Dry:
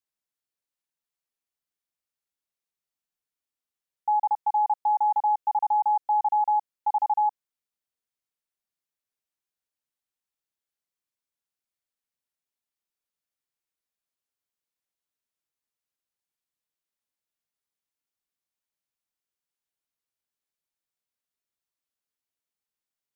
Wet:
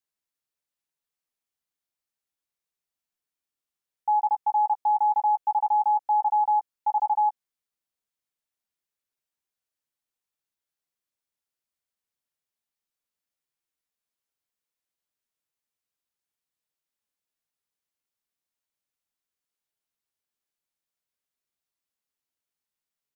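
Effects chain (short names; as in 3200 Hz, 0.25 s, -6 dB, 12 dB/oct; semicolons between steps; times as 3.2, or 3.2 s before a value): doubler 14 ms -11.5 dB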